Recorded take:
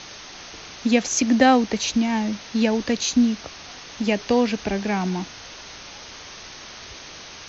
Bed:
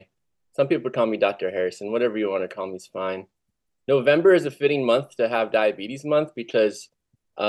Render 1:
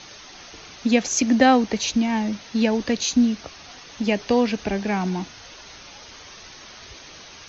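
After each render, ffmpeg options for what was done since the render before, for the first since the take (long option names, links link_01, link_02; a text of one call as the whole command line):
ffmpeg -i in.wav -af "afftdn=noise_reduction=6:noise_floor=-41" out.wav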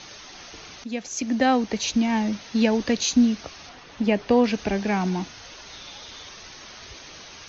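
ffmpeg -i in.wav -filter_complex "[0:a]asettb=1/sr,asplit=3[link_01][link_02][link_03];[link_01]atrim=end=3.694[link_04];[link_02]atrim=start=3.69:end=4.44,asetpts=PTS-STARTPTS,afade=type=in:duration=0.004:curve=qsin,afade=type=out:start_time=0.746:duration=0.004:curve=qsin,aemphasis=mode=reproduction:type=75fm[link_05];[link_03]atrim=start=4.436[link_06];[link_04][link_05]acrossfade=duration=0.004:curve1=hsin:curve2=qsin[link_07];[link_07][link_06]acrossfade=duration=0.004:curve1=qsin:curve2=hsin,asettb=1/sr,asplit=3[link_08][link_09][link_10];[link_08]atrim=end=5.724[link_11];[link_09]atrim=start=5.72:end=6.29,asetpts=PTS-STARTPTS,afade=type=in:duration=0.004:curve=qsin,afade=type=out:start_time=0.566:duration=0.004:curve=qsin,equalizer=frequency=3600:width=6.7:gain=9.5[link_12];[link_10]atrim=start=6.286[link_13];[link_11][link_12]acrossfade=duration=0.004:curve1=hsin:curve2=qsin[link_14];[link_14][link_13]acrossfade=duration=0.004:curve1=qsin:curve2=hsin,asplit=2[link_15][link_16];[link_15]atrim=end=0.84,asetpts=PTS-STARTPTS,afade=type=out:start_time=0.836:duration=0.004:curve=hsin:silence=0.188365[link_17];[link_16]atrim=start=0.84,asetpts=PTS-STARTPTS,afade=type=in:duration=1.29:silence=0.188365[link_18];[link_17][link_18]concat=n=2:v=0:a=1" out.wav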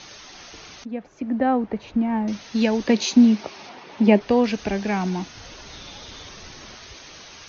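ffmpeg -i in.wav -filter_complex "[0:a]asettb=1/sr,asplit=3[link_01][link_02][link_03];[link_01]atrim=end=0.854[link_04];[link_02]atrim=start=0.85:end=2.28,asetpts=PTS-STARTPTS,afade=type=in:duration=0.004:curve=qsin,afade=type=out:start_time=1.426:duration=0.004:curve=qsin,lowpass=1300[link_05];[link_03]atrim=start=2.276[link_06];[link_04][link_05]acrossfade=duration=0.004:curve1=hsin:curve2=qsin[link_07];[link_07][link_06]acrossfade=duration=0.004:curve1=qsin:curve2=hsin,asplit=3[link_08][link_09][link_10];[link_08]afade=type=out:start_time=2.87:duration=0.02[link_11];[link_09]highpass=130,equalizer=frequency=210:width_type=q:width=4:gain=8,equalizer=frequency=380:width_type=q:width=4:gain=10,equalizer=frequency=600:width_type=q:width=4:gain=5,equalizer=frequency=900:width_type=q:width=4:gain=9,equalizer=frequency=2300:width_type=q:width=4:gain=4,lowpass=frequency=6100:width=0.5412,lowpass=frequency=6100:width=1.3066,afade=type=in:start_time=2.87:duration=0.02,afade=type=out:start_time=4.19:duration=0.02[link_12];[link_10]afade=type=in:start_time=4.19:duration=0.02[link_13];[link_11][link_12][link_13]amix=inputs=3:normalize=0,asettb=1/sr,asplit=3[link_14][link_15][link_16];[link_14]atrim=end=5.354[link_17];[link_15]atrim=start=5.35:end=6.77,asetpts=PTS-STARTPTS,afade=type=in:duration=0.004:curve=qsin,afade=type=out:start_time=1.416:duration=0.004:curve=qsin,lowshelf=frequency=440:gain=8.5[link_18];[link_16]atrim=start=6.766[link_19];[link_17][link_18]acrossfade=duration=0.004:curve1=hsin:curve2=qsin[link_20];[link_20][link_19]acrossfade=duration=0.004:curve1=qsin:curve2=hsin" out.wav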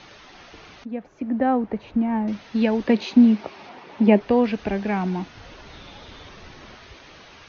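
ffmpeg -i in.wav -filter_complex "[0:a]acrossover=split=4500[link_01][link_02];[link_02]acompressor=threshold=-58dB:ratio=4:attack=1:release=60[link_03];[link_01][link_03]amix=inputs=2:normalize=0,highshelf=frequency=4900:gain=-10" out.wav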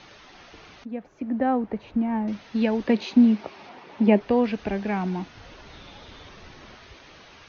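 ffmpeg -i in.wav -af "volume=-2.5dB" out.wav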